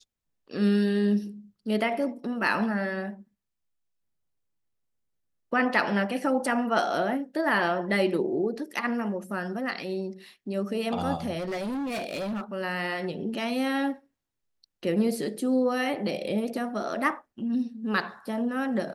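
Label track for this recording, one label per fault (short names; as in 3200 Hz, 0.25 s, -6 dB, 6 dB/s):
11.380000	12.420000	clipped -28.5 dBFS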